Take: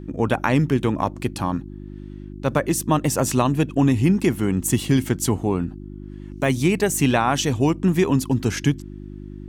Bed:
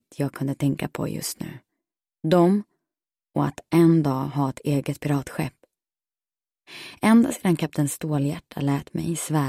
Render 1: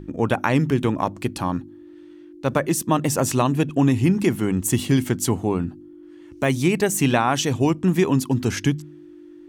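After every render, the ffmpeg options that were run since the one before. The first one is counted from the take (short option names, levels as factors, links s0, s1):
-af "bandreject=f=50:t=h:w=4,bandreject=f=100:t=h:w=4,bandreject=f=150:t=h:w=4,bandreject=f=200:t=h:w=4,bandreject=f=250:t=h:w=4"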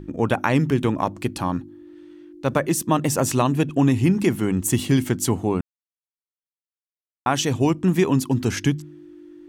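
-filter_complex "[0:a]asplit=3[s0][s1][s2];[s0]atrim=end=5.61,asetpts=PTS-STARTPTS,afade=t=out:st=5.606:d=0.004:c=hsin[s3];[s1]atrim=start=5.61:end=7.26,asetpts=PTS-STARTPTS,volume=0[s4];[s2]atrim=start=7.26,asetpts=PTS-STARTPTS,afade=t=in:d=0.004:c=hsin[s5];[s3][s4][s5]concat=n=3:v=0:a=1"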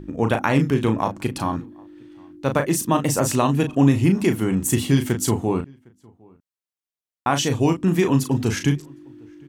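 -filter_complex "[0:a]asplit=2[s0][s1];[s1]adelay=36,volume=0.447[s2];[s0][s2]amix=inputs=2:normalize=0,asplit=2[s3][s4];[s4]adelay=758,volume=0.0398,highshelf=f=4000:g=-17.1[s5];[s3][s5]amix=inputs=2:normalize=0"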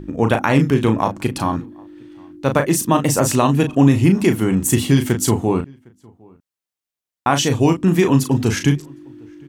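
-af "volume=1.58,alimiter=limit=0.708:level=0:latency=1"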